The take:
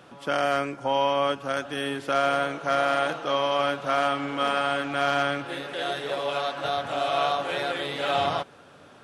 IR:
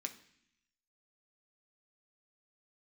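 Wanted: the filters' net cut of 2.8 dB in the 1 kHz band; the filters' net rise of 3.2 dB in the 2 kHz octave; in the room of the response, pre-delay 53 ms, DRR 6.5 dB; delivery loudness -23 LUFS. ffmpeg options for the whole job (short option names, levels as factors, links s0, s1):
-filter_complex "[0:a]equalizer=f=1000:t=o:g=-7.5,equalizer=f=2000:t=o:g=7.5,asplit=2[s0][s1];[1:a]atrim=start_sample=2205,adelay=53[s2];[s1][s2]afir=irnorm=-1:irlink=0,volume=0.596[s3];[s0][s3]amix=inputs=2:normalize=0,volume=1.33"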